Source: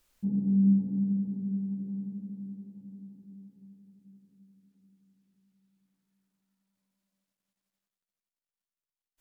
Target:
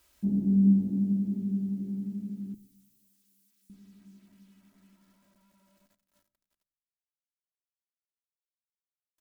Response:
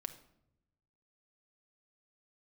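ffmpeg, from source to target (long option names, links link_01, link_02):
-filter_complex "[0:a]highpass=frequency=48:width=0.5412,highpass=frequency=48:width=1.3066,acrusher=bits=11:mix=0:aa=0.000001,asettb=1/sr,asplit=3[link_01][link_02][link_03];[link_01]atrim=end=2.544[link_04];[link_02]atrim=start=2.54:end=3.7,asetpts=PTS-STARTPTS,afade=type=in:duration=0.004:curve=qsin,afade=type=out:start_time=1.156:duration=0.004:curve=qsin,aderivative[link_05];[link_03]atrim=start=3.696[link_06];[link_04][link_05]acrossfade=duration=0.004:curve1=hsin:curve2=qsin[link_07];[link_07][link_06]acrossfade=duration=0.004:curve1=qsin:curve2=hsin,aecho=1:1:3.1:0.52,asplit=2[link_08][link_09];[1:a]atrim=start_sample=2205,lowshelf=frequency=120:gain=11[link_10];[link_09][link_10]afir=irnorm=-1:irlink=0,volume=-2.5dB[link_11];[link_08][link_11]amix=inputs=2:normalize=0"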